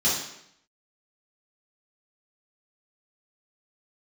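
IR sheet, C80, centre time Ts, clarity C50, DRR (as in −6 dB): 6.0 dB, 53 ms, 2.0 dB, −10.0 dB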